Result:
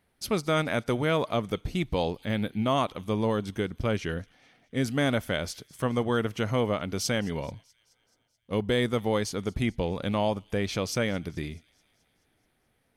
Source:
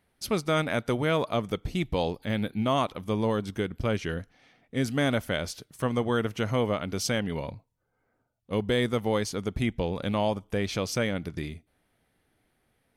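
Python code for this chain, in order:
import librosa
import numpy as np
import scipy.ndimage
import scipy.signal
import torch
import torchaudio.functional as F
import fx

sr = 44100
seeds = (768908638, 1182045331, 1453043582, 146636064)

y = fx.echo_wet_highpass(x, sr, ms=215, feedback_pct=61, hz=3100.0, wet_db=-22)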